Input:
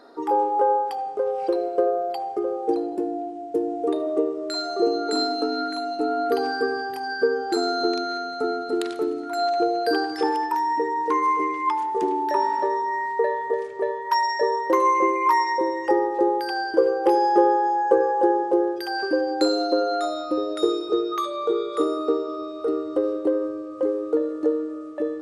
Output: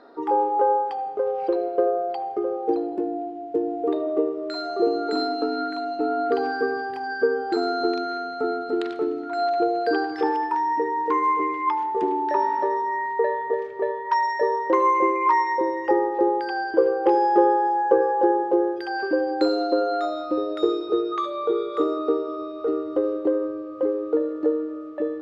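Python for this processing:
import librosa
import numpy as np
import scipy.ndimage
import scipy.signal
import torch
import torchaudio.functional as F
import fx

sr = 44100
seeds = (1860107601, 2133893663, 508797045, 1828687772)

y = scipy.signal.sosfilt(scipy.signal.butter(2, 3300.0, 'lowpass', fs=sr, output='sos'), x)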